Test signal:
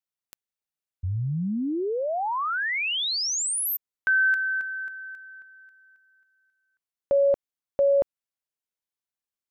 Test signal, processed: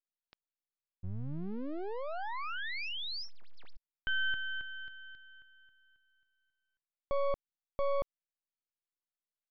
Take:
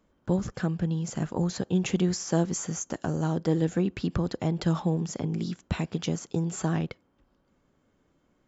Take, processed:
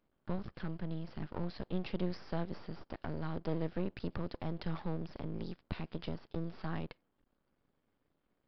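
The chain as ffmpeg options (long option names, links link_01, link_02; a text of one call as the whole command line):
ffmpeg -i in.wav -af "aeval=exprs='max(val(0),0)':channel_layout=same,aresample=11025,aresample=44100,volume=-7dB" out.wav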